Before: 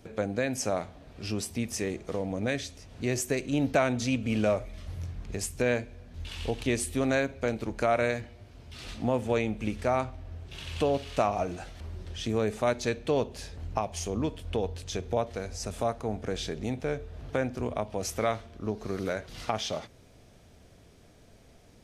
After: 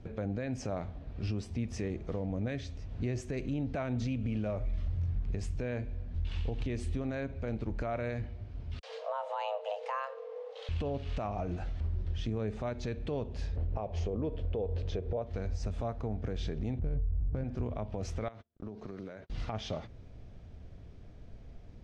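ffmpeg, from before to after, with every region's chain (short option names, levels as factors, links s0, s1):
-filter_complex "[0:a]asettb=1/sr,asplit=3[s0][s1][s2];[s0]atrim=end=8.794[s3];[s1]atrim=start=8.79:end=10.69,asetpts=PTS-STARTPTS,afade=t=in:d=0.004:c=qsin,afade=t=out:st=1.896:d=0.004:c=qsin,afreqshift=410,acrossover=split=150[s4][s5];[s5]adelay=40[s6];[s4][s6]amix=inputs=2:normalize=0,atrim=end_sample=83790[s7];[s2]atrim=start=10.686[s8];[s3][s7]acrossfade=d=0.004:c1=hsin:c2=qsin[s9];[s9][s8]acrossfade=d=0.004:c1=qsin:c2=hsin,asettb=1/sr,asplit=3[s10][s11][s12];[s10]atrim=end=13.564[s13];[s11]atrim=start=13.56:end=15.22,asetpts=PTS-STARTPTS,afade=t=in:d=0.004:c=qsin,afade=t=out:st=1.656:d=0.004:c=qsin,lowpass=4700,equalizer=f=500:w=1.3:g=11[s14];[s12]atrim=start=15.216[s15];[s13][s14]acrossfade=d=0.004:c1=hsin:c2=qsin[s16];[s16][s15]acrossfade=d=0.004:c1=qsin:c2=hsin,asettb=1/sr,asplit=3[s17][s18][s19];[s17]atrim=end=16.794[s20];[s18]atrim=start=16.79:end=17.44,asetpts=PTS-STARTPTS,afade=t=in:d=0.004:c=qsin,afade=t=out:st=0.646:d=0.004:c=qsin,aemphasis=mode=reproduction:type=riaa,adynamicsmooth=sensitivity=6.5:basefreq=840[s21];[s19]atrim=start=17.436[s22];[s20][s21]acrossfade=d=0.004:c1=hsin:c2=qsin[s23];[s23][s22]acrossfade=d=0.004:c1=qsin:c2=hsin,asettb=1/sr,asplit=3[s24][s25][s26];[s24]atrim=end=18.284[s27];[s25]atrim=start=18.28:end=19.3,asetpts=PTS-STARTPTS,afade=t=in:d=0.004:c=qsin,afade=t=out:st=1.016:d=0.004:c=qsin,highpass=150,agate=range=0.0141:threshold=0.00501:ratio=16:release=100:detection=peak,acompressor=threshold=0.0126:ratio=16:attack=3.2:release=140:knee=1:detection=peak[s28];[s26]atrim=start=19.296[s29];[s27][s28]acrossfade=d=0.004:c1=hsin:c2=qsin[s30];[s30][s29]acrossfade=d=0.004:c1=qsin:c2=hsin,lowpass=6700,aemphasis=mode=reproduction:type=bsi,alimiter=limit=0.075:level=0:latency=1:release=142,volume=0.668"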